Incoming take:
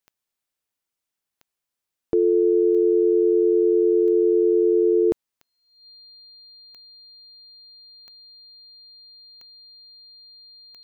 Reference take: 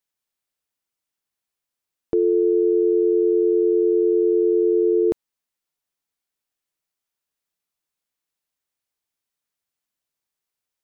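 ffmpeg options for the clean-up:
-af "adeclick=t=4,bandreject=f=4.2k:w=30"

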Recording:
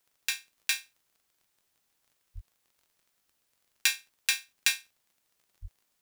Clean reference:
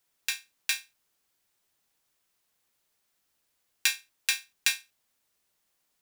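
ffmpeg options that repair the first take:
-filter_complex "[0:a]adeclick=t=4,asplit=3[a][b][c];[a]afade=t=out:st=2.34:d=0.02[d];[b]highpass=f=140:w=0.5412,highpass=f=140:w=1.3066,afade=t=in:st=2.34:d=0.02,afade=t=out:st=2.46:d=0.02[e];[c]afade=t=in:st=2.46:d=0.02[f];[d][e][f]amix=inputs=3:normalize=0,asplit=3[g][h][i];[g]afade=t=out:st=5.61:d=0.02[j];[h]highpass=f=140:w=0.5412,highpass=f=140:w=1.3066,afade=t=in:st=5.61:d=0.02,afade=t=out:st=5.73:d=0.02[k];[i]afade=t=in:st=5.73:d=0.02[l];[j][k][l]amix=inputs=3:normalize=0"

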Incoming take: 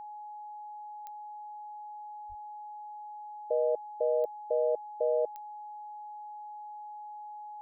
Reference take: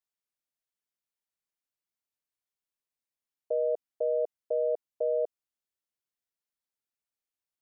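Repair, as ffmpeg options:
-filter_complex "[0:a]adeclick=t=4,bandreject=f=840:w=30,asplit=3[a][b][c];[a]afade=t=out:st=2.28:d=0.02[d];[b]highpass=f=140:w=0.5412,highpass=f=140:w=1.3066,afade=t=in:st=2.28:d=0.02,afade=t=out:st=2.4:d=0.02[e];[c]afade=t=in:st=2.4:d=0.02[f];[d][e][f]amix=inputs=3:normalize=0"

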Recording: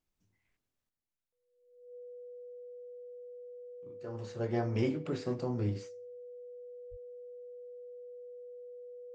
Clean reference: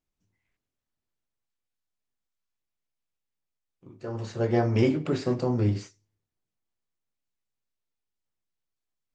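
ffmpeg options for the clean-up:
-filter_complex "[0:a]bandreject=f=490:w=30,asplit=3[a][b][c];[a]afade=t=out:st=6.9:d=0.02[d];[b]highpass=f=140:w=0.5412,highpass=f=140:w=1.3066,afade=t=in:st=6.9:d=0.02,afade=t=out:st=7.02:d=0.02[e];[c]afade=t=in:st=7.02:d=0.02[f];[d][e][f]amix=inputs=3:normalize=0,asetnsamples=n=441:p=0,asendcmd='0.89 volume volume 8.5dB',volume=0dB"

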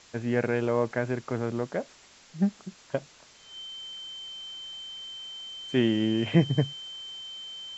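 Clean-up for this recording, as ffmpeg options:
-af "bandreject=f=3.1k:w=30,afwtdn=0.0028"

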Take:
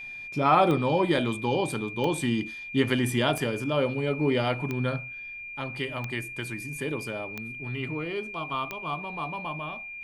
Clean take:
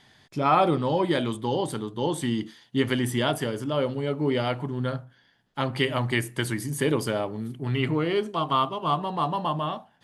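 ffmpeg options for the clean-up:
-af "adeclick=t=4,bandreject=f=2.4k:w=30,agate=range=-21dB:threshold=-32dB,asetnsamples=n=441:p=0,asendcmd='5.52 volume volume 8dB',volume=0dB"

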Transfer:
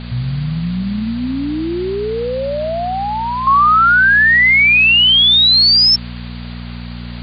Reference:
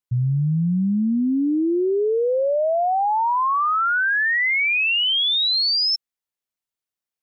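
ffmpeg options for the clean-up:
-af "bandreject=f=59.7:t=h:w=4,bandreject=f=119.4:t=h:w=4,bandreject=f=179.1:t=h:w=4,bandreject=f=238.8:t=h:w=4,afwtdn=0.025,asetnsamples=n=441:p=0,asendcmd='3.47 volume volume -10dB',volume=0dB"

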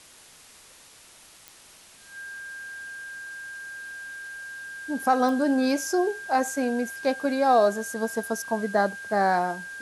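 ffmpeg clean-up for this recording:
-af "adeclick=t=4,bandreject=f=1.6k:w=30,afwtdn=0.0035"

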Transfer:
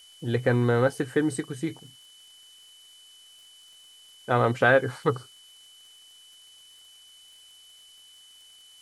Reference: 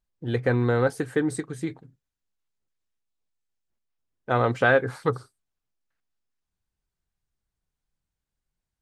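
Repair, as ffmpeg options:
-af "adeclick=t=4,bandreject=f=3k:w=30,afftdn=nr=30:nf=-53"

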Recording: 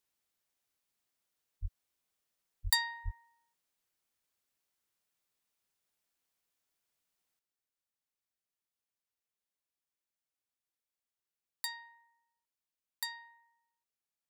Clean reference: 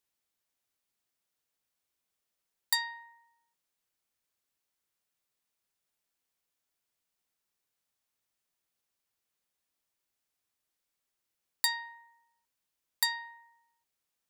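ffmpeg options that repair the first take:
-filter_complex "[0:a]asplit=3[a][b][c];[a]afade=t=out:st=1.61:d=0.02[d];[b]highpass=f=140:w=0.5412,highpass=f=140:w=1.3066,afade=t=in:st=1.61:d=0.02,afade=t=out:st=1.73:d=0.02[e];[c]afade=t=in:st=1.73:d=0.02[f];[d][e][f]amix=inputs=3:normalize=0,asplit=3[g][h][i];[g]afade=t=out:st=2.63:d=0.02[j];[h]highpass=f=140:w=0.5412,highpass=f=140:w=1.3066,afade=t=in:st=2.63:d=0.02,afade=t=out:st=2.75:d=0.02[k];[i]afade=t=in:st=2.75:d=0.02[l];[j][k][l]amix=inputs=3:normalize=0,asplit=3[m][n][o];[m]afade=t=out:st=3.04:d=0.02[p];[n]highpass=f=140:w=0.5412,highpass=f=140:w=1.3066,afade=t=in:st=3.04:d=0.02,afade=t=out:st=3.16:d=0.02[q];[o]afade=t=in:st=3.16:d=0.02[r];[p][q][r]amix=inputs=3:normalize=0,asetnsamples=n=441:p=0,asendcmd='7.39 volume volume 10dB',volume=0dB"

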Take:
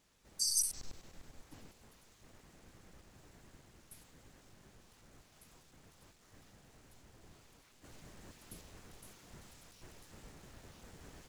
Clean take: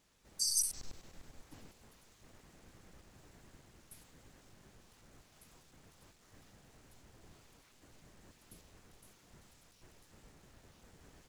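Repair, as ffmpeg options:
-af "adeclick=t=4,asetnsamples=n=441:p=0,asendcmd='7.84 volume volume -5.5dB',volume=0dB"

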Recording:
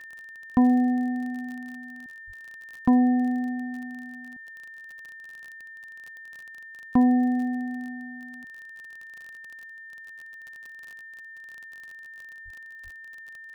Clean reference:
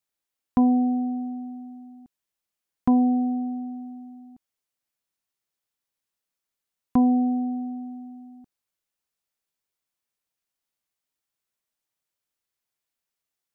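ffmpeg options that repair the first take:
-filter_complex "[0:a]adeclick=t=4,bandreject=f=1.8k:w=30,asplit=3[a][b][c];[a]afade=t=out:st=2.26:d=0.02[d];[b]highpass=f=140:w=0.5412,highpass=f=140:w=1.3066,afade=t=in:st=2.26:d=0.02,afade=t=out:st=2.38:d=0.02[e];[c]afade=t=in:st=2.38:d=0.02[f];[d][e][f]amix=inputs=3:normalize=0,asplit=3[g][h][i];[g]afade=t=out:st=12.44:d=0.02[j];[h]highpass=f=140:w=0.5412,highpass=f=140:w=1.3066,afade=t=in:st=12.44:d=0.02,afade=t=out:st=12.56:d=0.02[k];[i]afade=t=in:st=12.56:d=0.02[l];[j][k][l]amix=inputs=3:normalize=0,asplit=3[m][n][o];[m]afade=t=out:st=12.83:d=0.02[p];[n]highpass=f=140:w=0.5412,highpass=f=140:w=1.3066,afade=t=in:st=12.83:d=0.02,afade=t=out:st=12.95:d=0.02[q];[o]afade=t=in:st=12.95:d=0.02[r];[p][q][r]amix=inputs=3:normalize=0"

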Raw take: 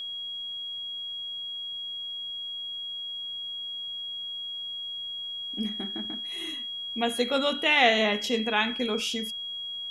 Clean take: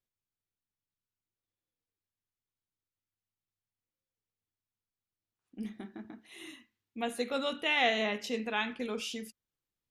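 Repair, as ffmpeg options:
-af "bandreject=f=3.3k:w=30,agate=range=-21dB:threshold=-28dB,asetnsamples=n=441:p=0,asendcmd='3.22 volume volume -7dB',volume=0dB"

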